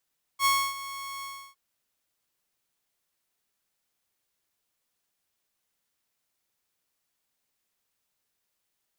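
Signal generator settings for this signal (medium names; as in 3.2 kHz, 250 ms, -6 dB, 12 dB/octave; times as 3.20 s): ADSR saw 1.1 kHz, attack 64 ms, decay 282 ms, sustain -16 dB, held 0.84 s, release 318 ms -17 dBFS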